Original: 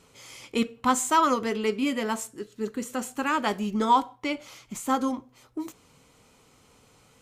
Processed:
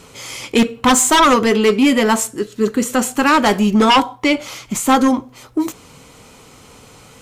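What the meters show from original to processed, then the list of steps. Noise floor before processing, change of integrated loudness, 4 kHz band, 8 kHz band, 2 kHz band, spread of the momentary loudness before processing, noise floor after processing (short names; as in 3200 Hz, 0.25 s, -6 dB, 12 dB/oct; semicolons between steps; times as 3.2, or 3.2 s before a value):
-60 dBFS, +12.0 dB, +16.0 dB, +14.5 dB, +13.5 dB, 16 LU, -45 dBFS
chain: sine folder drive 8 dB, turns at -10.5 dBFS; gain +3.5 dB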